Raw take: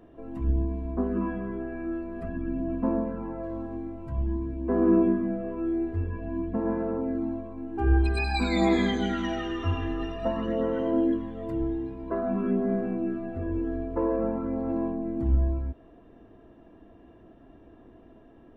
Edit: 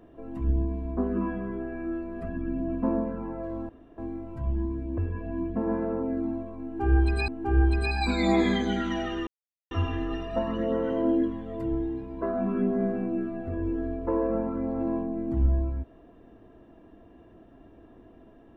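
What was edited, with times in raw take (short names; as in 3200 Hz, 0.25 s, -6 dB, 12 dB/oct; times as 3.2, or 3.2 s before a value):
3.69 insert room tone 0.29 s
4.69–5.96 cut
7.61–8.26 loop, 2 plays
9.6 insert silence 0.44 s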